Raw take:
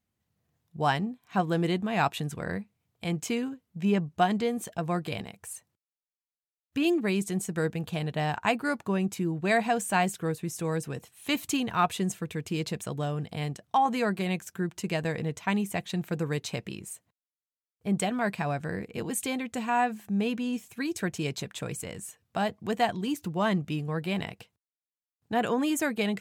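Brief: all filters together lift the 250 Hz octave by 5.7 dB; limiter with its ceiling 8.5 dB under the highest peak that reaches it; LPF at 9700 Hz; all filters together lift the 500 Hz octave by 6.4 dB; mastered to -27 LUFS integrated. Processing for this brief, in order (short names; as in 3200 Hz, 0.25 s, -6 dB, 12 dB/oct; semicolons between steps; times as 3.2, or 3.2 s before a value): LPF 9700 Hz; bell 250 Hz +6 dB; bell 500 Hz +6.5 dB; gain +0.5 dB; limiter -16 dBFS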